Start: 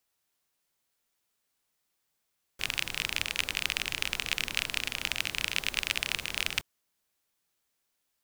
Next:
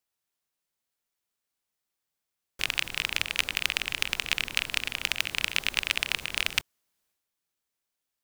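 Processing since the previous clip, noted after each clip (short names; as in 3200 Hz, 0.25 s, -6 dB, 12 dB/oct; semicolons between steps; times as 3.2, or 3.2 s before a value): transient shaper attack +11 dB, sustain +7 dB; gain -6.5 dB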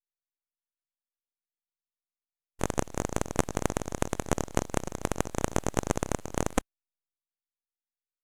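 band shelf 5100 Hz +16 dB; full-wave rectifier; spectral expander 1.5:1; gain -11.5 dB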